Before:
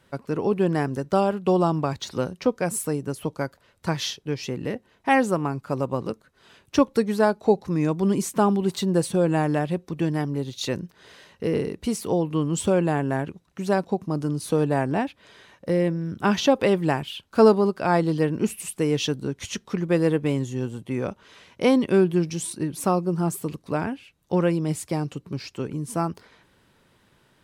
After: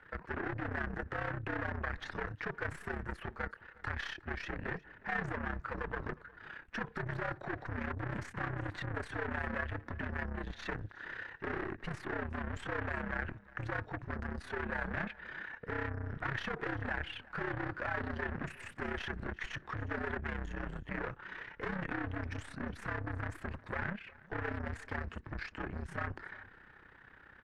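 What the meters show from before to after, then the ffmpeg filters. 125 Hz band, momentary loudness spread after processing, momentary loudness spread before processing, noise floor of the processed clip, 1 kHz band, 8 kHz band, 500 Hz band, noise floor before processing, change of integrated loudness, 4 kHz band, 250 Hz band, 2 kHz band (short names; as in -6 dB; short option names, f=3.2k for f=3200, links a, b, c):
-13.5 dB, 7 LU, 10 LU, -59 dBFS, -13.5 dB, -28.0 dB, -20.5 dB, -62 dBFS, -15.5 dB, -16.5 dB, -19.5 dB, -3.0 dB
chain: -af "alimiter=limit=-15dB:level=0:latency=1:release=68,afreqshift=-71,aeval=exprs='(tanh(70.8*val(0)+0.25)-tanh(0.25))/70.8':c=same,crystalizer=i=2:c=0,lowpass=f=1.7k:t=q:w=4.5,tremolo=f=32:d=0.71,aecho=1:1:361:0.0841,volume=1.5dB"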